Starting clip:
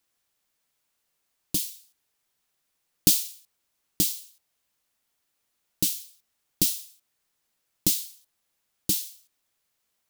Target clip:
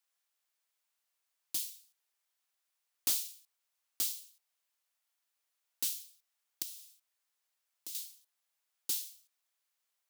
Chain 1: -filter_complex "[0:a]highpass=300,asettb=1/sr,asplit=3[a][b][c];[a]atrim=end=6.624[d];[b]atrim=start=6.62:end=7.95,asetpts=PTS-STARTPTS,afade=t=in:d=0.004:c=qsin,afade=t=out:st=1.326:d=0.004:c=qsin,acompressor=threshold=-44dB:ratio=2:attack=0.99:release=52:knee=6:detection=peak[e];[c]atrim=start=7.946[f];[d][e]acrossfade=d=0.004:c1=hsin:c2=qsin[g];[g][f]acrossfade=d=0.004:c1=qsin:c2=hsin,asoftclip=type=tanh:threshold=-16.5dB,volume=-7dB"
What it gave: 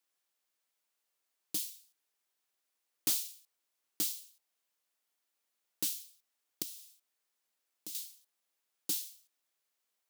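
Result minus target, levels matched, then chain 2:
250 Hz band +10.5 dB
-filter_complex "[0:a]highpass=660,asettb=1/sr,asplit=3[a][b][c];[a]atrim=end=6.624[d];[b]atrim=start=6.62:end=7.95,asetpts=PTS-STARTPTS,afade=t=in:d=0.004:c=qsin,afade=t=out:st=1.326:d=0.004:c=qsin,acompressor=threshold=-44dB:ratio=2:attack=0.99:release=52:knee=6:detection=peak[e];[c]atrim=start=7.946[f];[d][e]acrossfade=d=0.004:c1=hsin:c2=qsin[g];[g][f]acrossfade=d=0.004:c1=qsin:c2=hsin,asoftclip=type=tanh:threshold=-16.5dB,volume=-7dB"

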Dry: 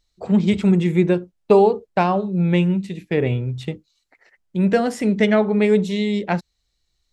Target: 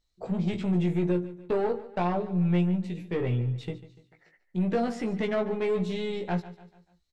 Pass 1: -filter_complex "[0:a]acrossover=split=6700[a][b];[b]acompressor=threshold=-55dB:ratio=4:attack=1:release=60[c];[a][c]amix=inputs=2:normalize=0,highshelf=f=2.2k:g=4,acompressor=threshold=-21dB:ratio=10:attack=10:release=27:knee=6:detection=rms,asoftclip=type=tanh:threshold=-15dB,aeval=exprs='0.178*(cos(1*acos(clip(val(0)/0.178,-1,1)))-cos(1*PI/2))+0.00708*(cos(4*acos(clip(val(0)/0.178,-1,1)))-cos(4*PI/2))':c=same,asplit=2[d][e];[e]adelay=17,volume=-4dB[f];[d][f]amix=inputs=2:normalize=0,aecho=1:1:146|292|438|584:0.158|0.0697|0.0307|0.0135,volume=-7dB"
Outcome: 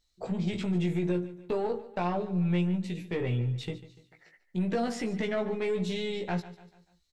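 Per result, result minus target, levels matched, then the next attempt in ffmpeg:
compressor: peak gain reduction +5.5 dB; 4000 Hz band +5.0 dB
-filter_complex "[0:a]acrossover=split=6700[a][b];[b]acompressor=threshold=-55dB:ratio=4:attack=1:release=60[c];[a][c]amix=inputs=2:normalize=0,highshelf=f=2.2k:g=4,acompressor=threshold=-15dB:ratio=10:attack=10:release=27:knee=6:detection=rms,asoftclip=type=tanh:threshold=-15dB,aeval=exprs='0.178*(cos(1*acos(clip(val(0)/0.178,-1,1)))-cos(1*PI/2))+0.00708*(cos(4*acos(clip(val(0)/0.178,-1,1)))-cos(4*PI/2))':c=same,asplit=2[d][e];[e]adelay=17,volume=-4dB[f];[d][f]amix=inputs=2:normalize=0,aecho=1:1:146|292|438|584:0.158|0.0697|0.0307|0.0135,volume=-7dB"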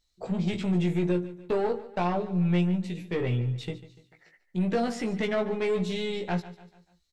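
4000 Hz band +4.5 dB
-filter_complex "[0:a]acrossover=split=6700[a][b];[b]acompressor=threshold=-55dB:ratio=4:attack=1:release=60[c];[a][c]amix=inputs=2:normalize=0,highshelf=f=2.2k:g=-3,acompressor=threshold=-15dB:ratio=10:attack=10:release=27:knee=6:detection=rms,asoftclip=type=tanh:threshold=-15dB,aeval=exprs='0.178*(cos(1*acos(clip(val(0)/0.178,-1,1)))-cos(1*PI/2))+0.00708*(cos(4*acos(clip(val(0)/0.178,-1,1)))-cos(4*PI/2))':c=same,asplit=2[d][e];[e]adelay=17,volume=-4dB[f];[d][f]amix=inputs=2:normalize=0,aecho=1:1:146|292|438|584:0.158|0.0697|0.0307|0.0135,volume=-7dB"

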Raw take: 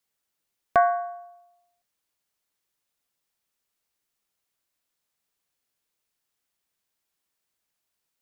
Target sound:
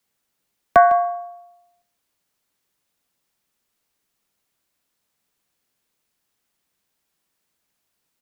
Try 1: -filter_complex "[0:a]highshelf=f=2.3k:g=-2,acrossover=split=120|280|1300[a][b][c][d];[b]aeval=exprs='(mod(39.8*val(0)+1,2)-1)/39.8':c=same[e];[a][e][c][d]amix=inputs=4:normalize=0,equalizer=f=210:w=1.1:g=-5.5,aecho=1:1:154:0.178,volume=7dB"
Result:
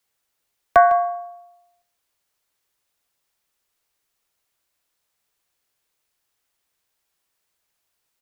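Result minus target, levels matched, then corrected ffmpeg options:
250 Hz band -6.0 dB
-filter_complex "[0:a]highshelf=f=2.3k:g=-2,acrossover=split=120|280|1300[a][b][c][d];[b]aeval=exprs='(mod(39.8*val(0)+1,2)-1)/39.8':c=same[e];[a][e][c][d]amix=inputs=4:normalize=0,equalizer=f=210:w=1.1:g=4,aecho=1:1:154:0.178,volume=7dB"

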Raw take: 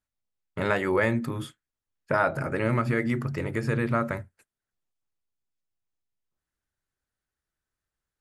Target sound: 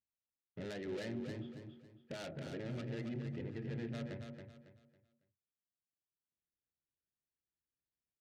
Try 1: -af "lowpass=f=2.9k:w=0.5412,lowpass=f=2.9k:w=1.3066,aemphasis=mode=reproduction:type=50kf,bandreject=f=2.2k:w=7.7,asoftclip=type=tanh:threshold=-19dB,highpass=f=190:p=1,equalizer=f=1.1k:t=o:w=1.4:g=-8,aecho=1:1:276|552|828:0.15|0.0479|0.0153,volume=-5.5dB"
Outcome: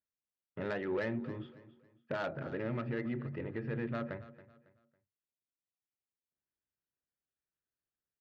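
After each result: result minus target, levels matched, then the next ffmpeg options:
echo-to-direct -10.5 dB; 1000 Hz band +6.0 dB; soft clip: distortion -8 dB
-af "lowpass=f=2.9k:w=0.5412,lowpass=f=2.9k:w=1.3066,aemphasis=mode=reproduction:type=50kf,bandreject=f=2.2k:w=7.7,asoftclip=type=tanh:threshold=-19dB,highpass=f=190:p=1,equalizer=f=1.1k:t=o:w=1.4:g=-8,aecho=1:1:276|552|828|1104:0.501|0.16|0.0513|0.0164,volume=-5.5dB"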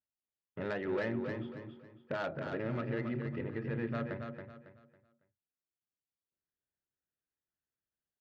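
1000 Hz band +6.5 dB; soft clip: distortion -8 dB
-af "lowpass=f=2.9k:w=0.5412,lowpass=f=2.9k:w=1.3066,aemphasis=mode=reproduction:type=50kf,bandreject=f=2.2k:w=7.7,asoftclip=type=tanh:threshold=-19dB,highpass=f=190:p=1,equalizer=f=1.1k:t=o:w=1.4:g=-20,aecho=1:1:276|552|828|1104:0.501|0.16|0.0513|0.0164,volume=-5.5dB"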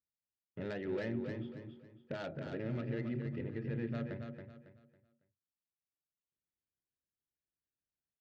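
soft clip: distortion -8 dB
-af "lowpass=f=2.9k:w=0.5412,lowpass=f=2.9k:w=1.3066,aemphasis=mode=reproduction:type=50kf,bandreject=f=2.2k:w=7.7,asoftclip=type=tanh:threshold=-27.5dB,highpass=f=190:p=1,equalizer=f=1.1k:t=o:w=1.4:g=-20,aecho=1:1:276|552|828|1104:0.501|0.16|0.0513|0.0164,volume=-5.5dB"

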